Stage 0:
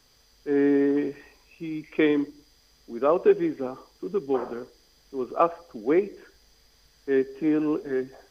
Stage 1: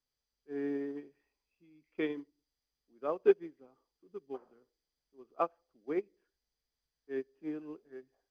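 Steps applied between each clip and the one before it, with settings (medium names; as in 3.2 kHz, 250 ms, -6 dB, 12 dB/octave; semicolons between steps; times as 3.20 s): upward expansion 2.5:1, over -30 dBFS; trim -4.5 dB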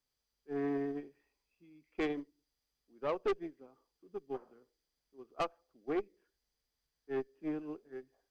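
valve stage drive 32 dB, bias 0.45; trim +4 dB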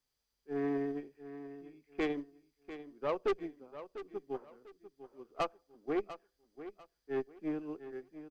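feedback delay 696 ms, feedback 28%, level -13 dB; trim +1 dB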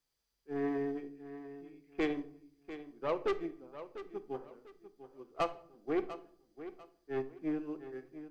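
simulated room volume 930 m³, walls furnished, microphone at 0.71 m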